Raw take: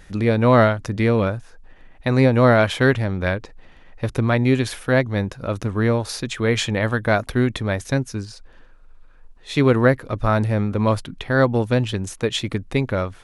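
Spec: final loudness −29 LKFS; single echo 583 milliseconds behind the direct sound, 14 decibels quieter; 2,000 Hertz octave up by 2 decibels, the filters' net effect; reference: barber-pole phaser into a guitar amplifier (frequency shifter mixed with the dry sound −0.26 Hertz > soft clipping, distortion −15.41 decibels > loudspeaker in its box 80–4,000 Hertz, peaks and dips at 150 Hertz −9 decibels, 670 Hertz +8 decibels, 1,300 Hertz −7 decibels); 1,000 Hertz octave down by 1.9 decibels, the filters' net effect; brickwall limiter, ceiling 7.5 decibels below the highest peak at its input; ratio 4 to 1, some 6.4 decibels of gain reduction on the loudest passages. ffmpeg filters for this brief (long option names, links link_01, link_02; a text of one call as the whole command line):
ffmpeg -i in.wav -filter_complex "[0:a]equalizer=frequency=1000:width_type=o:gain=-6.5,equalizer=frequency=2000:width_type=o:gain=6.5,acompressor=threshold=-18dB:ratio=4,alimiter=limit=-14.5dB:level=0:latency=1,aecho=1:1:583:0.2,asplit=2[link_01][link_02];[link_02]afreqshift=-0.26[link_03];[link_01][link_03]amix=inputs=2:normalize=1,asoftclip=threshold=-21.5dB,highpass=80,equalizer=frequency=150:width_type=q:width=4:gain=-9,equalizer=frequency=670:width_type=q:width=4:gain=8,equalizer=frequency=1300:width_type=q:width=4:gain=-7,lowpass=frequency=4000:width=0.5412,lowpass=frequency=4000:width=1.3066,volume=2dB" out.wav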